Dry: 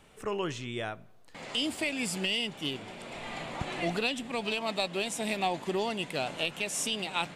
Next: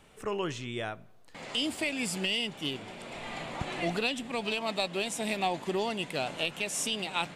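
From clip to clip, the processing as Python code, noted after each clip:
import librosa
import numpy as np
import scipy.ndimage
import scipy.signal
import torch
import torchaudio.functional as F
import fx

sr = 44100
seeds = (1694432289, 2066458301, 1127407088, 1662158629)

y = x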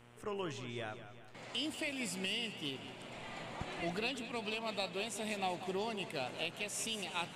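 y = fx.dmg_buzz(x, sr, base_hz=120.0, harmonics=27, level_db=-54.0, tilt_db=-4, odd_only=False)
y = fx.echo_warbled(y, sr, ms=188, feedback_pct=50, rate_hz=2.8, cents=74, wet_db=-12)
y = y * librosa.db_to_amplitude(-7.5)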